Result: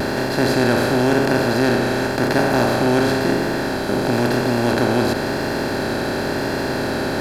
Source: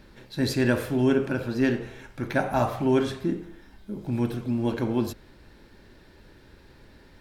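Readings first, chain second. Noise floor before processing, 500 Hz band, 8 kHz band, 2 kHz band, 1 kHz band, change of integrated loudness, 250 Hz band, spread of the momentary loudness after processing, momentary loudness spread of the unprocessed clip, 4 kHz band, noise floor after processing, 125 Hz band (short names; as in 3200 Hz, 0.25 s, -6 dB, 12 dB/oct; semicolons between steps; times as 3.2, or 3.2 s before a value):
-53 dBFS, +10.0 dB, +13.5 dB, +13.0 dB, +12.0 dB, +7.5 dB, +7.5 dB, 5 LU, 14 LU, +14.0 dB, -23 dBFS, +7.0 dB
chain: per-bin compression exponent 0.2; vibrato 0.96 Hz 30 cents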